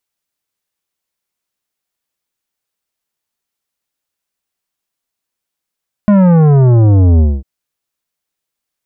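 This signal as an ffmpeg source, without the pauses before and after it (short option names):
-f lavfi -i "aevalsrc='0.501*clip((1.35-t)/0.23,0,1)*tanh(3.98*sin(2*PI*210*1.35/log(65/210)*(exp(log(65/210)*t/1.35)-1)))/tanh(3.98)':d=1.35:s=44100"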